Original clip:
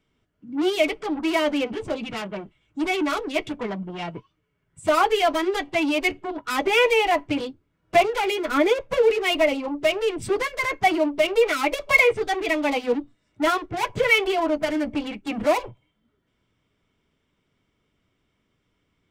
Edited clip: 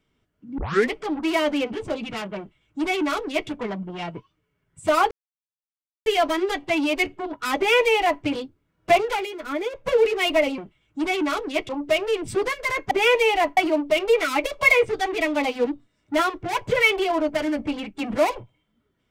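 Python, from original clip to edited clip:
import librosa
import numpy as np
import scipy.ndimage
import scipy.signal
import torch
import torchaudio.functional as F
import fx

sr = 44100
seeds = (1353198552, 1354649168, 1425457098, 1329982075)

y = fx.edit(x, sr, fx.tape_start(start_s=0.58, length_s=0.33),
    fx.duplicate(start_s=2.38, length_s=1.11, to_s=9.63),
    fx.insert_silence(at_s=5.11, length_s=0.95),
    fx.duplicate(start_s=6.62, length_s=0.66, to_s=10.85),
    fx.fade_down_up(start_s=8.18, length_s=0.73, db=-8.0, fade_s=0.14), tone=tone)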